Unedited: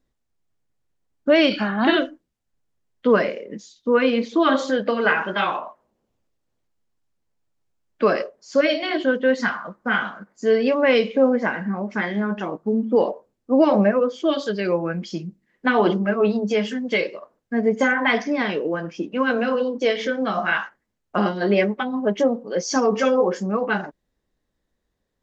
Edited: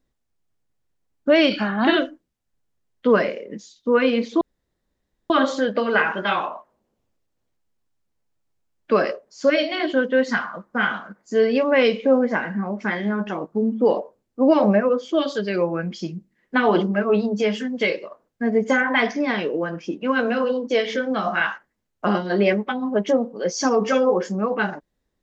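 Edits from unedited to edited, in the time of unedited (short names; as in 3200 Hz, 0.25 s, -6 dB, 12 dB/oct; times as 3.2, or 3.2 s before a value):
4.41 insert room tone 0.89 s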